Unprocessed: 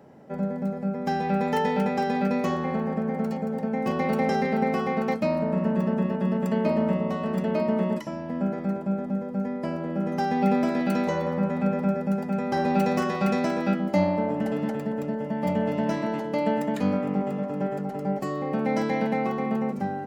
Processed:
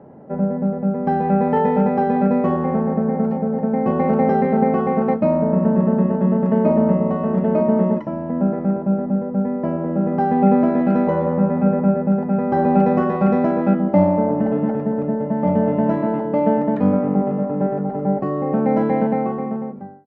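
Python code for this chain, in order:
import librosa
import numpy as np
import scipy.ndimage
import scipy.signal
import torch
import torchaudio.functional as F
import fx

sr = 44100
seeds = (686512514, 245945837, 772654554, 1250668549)

y = fx.fade_out_tail(x, sr, length_s=1.09)
y = scipy.signal.sosfilt(scipy.signal.butter(2, 1100.0, 'lowpass', fs=sr, output='sos'), y)
y = F.gain(torch.from_numpy(y), 8.0).numpy()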